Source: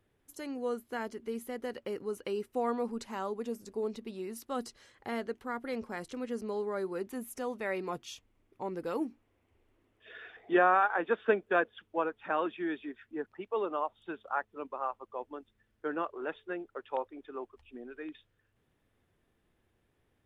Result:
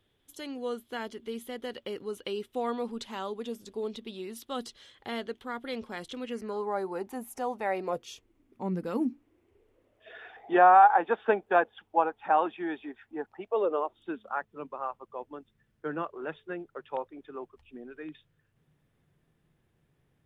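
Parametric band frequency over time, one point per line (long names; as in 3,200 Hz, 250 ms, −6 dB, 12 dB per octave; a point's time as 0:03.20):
parametric band +14.5 dB 0.47 octaves
0:06.23 3,400 Hz
0:06.70 820 Hz
0:07.66 820 Hz
0:08.75 180 Hz
0:10.26 810 Hz
0:13.34 810 Hz
0:14.49 150 Hz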